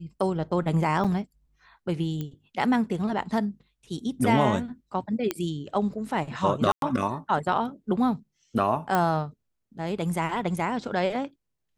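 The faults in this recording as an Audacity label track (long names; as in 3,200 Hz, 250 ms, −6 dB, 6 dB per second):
1.040000	1.050000	drop-out 6.2 ms
2.210000	2.210000	click −20 dBFS
5.310000	5.310000	click −11 dBFS
6.720000	6.820000	drop-out 102 ms
8.950000	8.950000	click −11 dBFS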